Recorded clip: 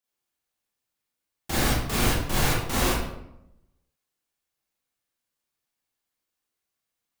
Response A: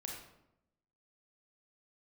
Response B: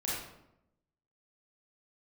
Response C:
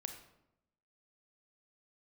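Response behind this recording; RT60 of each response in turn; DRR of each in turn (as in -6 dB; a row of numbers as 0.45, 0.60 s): B; 0.85, 0.85, 0.85 s; -1.0, -7.5, 5.5 dB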